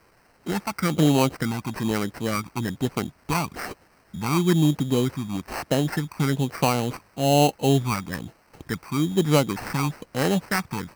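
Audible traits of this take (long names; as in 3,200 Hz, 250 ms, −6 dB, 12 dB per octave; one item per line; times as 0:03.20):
a quantiser's noise floor 10 bits, dither triangular
phaser sweep stages 8, 1.1 Hz, lowest notch 470–2,800 Hz
aliases and images of a low sample rate 3,500 Hz, jitter 0%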